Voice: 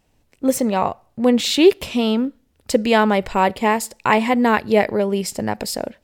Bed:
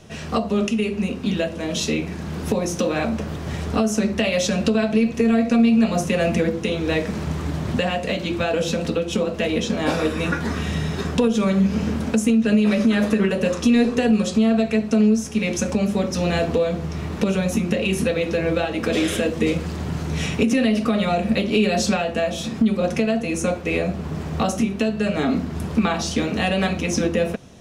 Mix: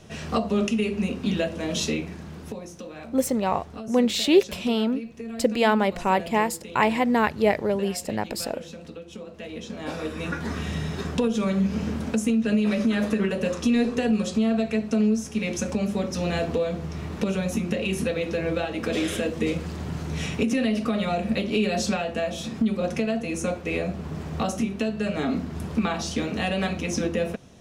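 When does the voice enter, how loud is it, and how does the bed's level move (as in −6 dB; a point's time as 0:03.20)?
2.70 s, −5.0 dB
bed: 0:01.83 −2.5 dB
0:02.77 −17.5 dB
0:09.23 −17.5 dB
0:10.52 −5 dB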